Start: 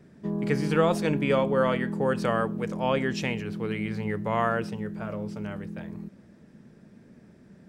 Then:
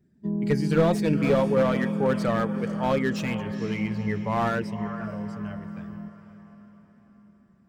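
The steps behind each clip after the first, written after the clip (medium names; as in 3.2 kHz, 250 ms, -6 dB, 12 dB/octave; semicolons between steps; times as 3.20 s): expander on every frequency bin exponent 1.5; echo that smears into a reverb 474 ms, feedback 47%, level -14 dB; slew-rate limiter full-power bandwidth 47 Hz; trim +4.5 dB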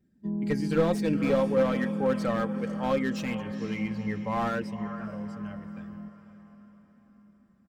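comb 3.8 ms, depth 40%; trim -4 dB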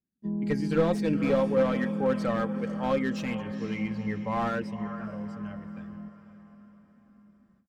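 gate with hold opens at -54 dBFS; treble shelf 7.9 kHz -7 dB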